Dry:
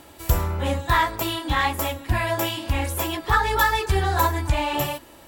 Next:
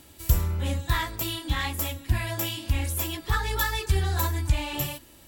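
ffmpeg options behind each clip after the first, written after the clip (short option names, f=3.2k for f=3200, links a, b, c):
-af "equalizer=f=820:t=o:w=2.8:g=-12"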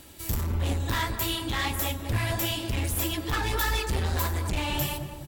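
-filter_complex "[0:a]volume=27dB,asoftclip=hard,volume=-27dB,flanger=delay=1.4:depth=8.8:regen=55:speed=1.6:shape=triangular,asplit=2[a][b];[b]adelay=203,lowpass=f=860:p=1,volume=-5dB,asplit=2[c][d];[d]adelay=203,lowpass=f=860:p=1,volume=0.5,asplit=2[e][f];[f]adelay=203,lowpass=f=860:p=1,volume=0.5,asplit=2[g][h];[h]adelay=203,lowpass=f=860:p=1,volume=0.5,asplit=2[i][j];[j]adelay=203,lowpass=f=860:p=1,volume=0.5,asplit=2[k][l];[l]adelay=203,lowpass=f=860:p=1,volume=0.5[m];[a][c][e][g][i][k][m]amix=inputs=7:normalize=0,volume=7dB"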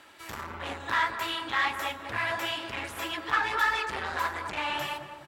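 -af "bandpass=f=1.4k:t=q:w=1.3:csg=0,volume=6.5dB"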